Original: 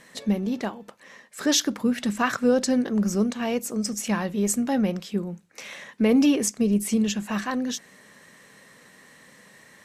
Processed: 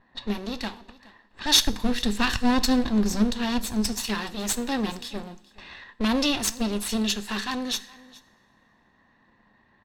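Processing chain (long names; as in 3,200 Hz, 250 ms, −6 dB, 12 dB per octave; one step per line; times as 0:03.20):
lower of the sound and its delayed copy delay 1.1 ms
0:01.66–0:03.93: low-shelf EQ 260 Hz +9 dB
low-pass that shuts in the quiet parts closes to 690 Hz, open at −29 dBFS
graphic EQ with 15 bands 160 Hz −10 dB, 630 Hz −6 dB, 4,000 Hz +12 dB
single-tap delay 421 ms −22 dB
coupled-rooms reverb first 0.5 s, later 2.5 s, from −18 dB, DRR 14.5 dB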